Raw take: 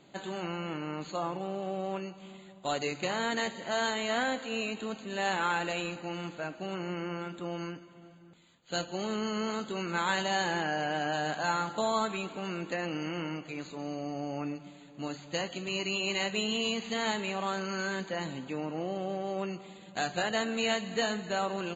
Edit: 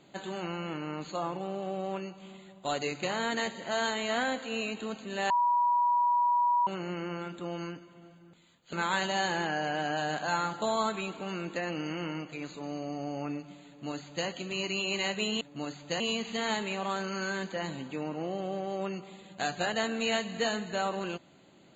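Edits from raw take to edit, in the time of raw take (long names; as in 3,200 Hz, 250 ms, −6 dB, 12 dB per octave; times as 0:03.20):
0:05.30–0:06.67: beep over 968 Hz −22.5 dBFS
0:08.73–0:09.89: remove
0:14.84–0:15.43: duplicate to 0:16.57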